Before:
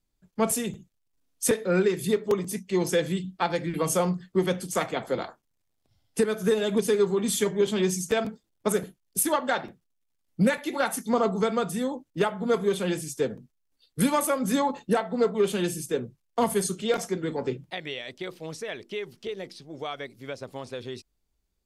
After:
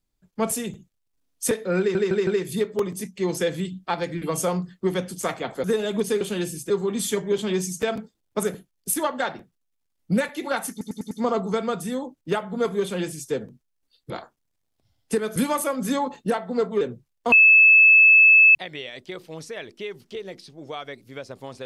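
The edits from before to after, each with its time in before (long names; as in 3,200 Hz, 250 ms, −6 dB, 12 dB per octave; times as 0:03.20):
0:01.79: stutter 0.16 s, 4 plays
0:05.16–0:06.42: move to 0:13.99
0:11.00: stutter 0.10 s, 5 plays
0:15.44–0:15.93: move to 0:06.99
0:16.44–0:17.67: beep over 2,610 Hz −9.5 dBFS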